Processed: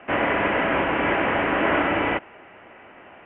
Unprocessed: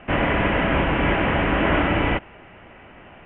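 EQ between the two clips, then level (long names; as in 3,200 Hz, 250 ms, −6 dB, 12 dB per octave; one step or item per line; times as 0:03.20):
three-way crossover with the lows and the highs turned down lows −20 dB, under 240 Hz, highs −16 dB, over 2,700 Hz
parametric band 94 Hz +8.5 dB 0.94 octaves
high-shelf EQ 3,300 Hz +7 dB
0.0 dB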